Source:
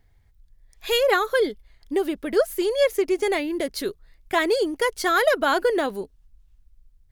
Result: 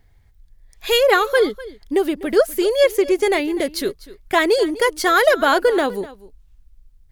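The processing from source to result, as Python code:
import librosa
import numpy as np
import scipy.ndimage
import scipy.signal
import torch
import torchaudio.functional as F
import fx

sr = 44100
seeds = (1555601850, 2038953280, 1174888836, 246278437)

y = x + 10.0 ** (-18.5 / 20.0) * np.pad(x, (int(249 * sr / 1000.0), 0))[:len(x)]
y = y * 10.0 ** (5.0 / 20.0)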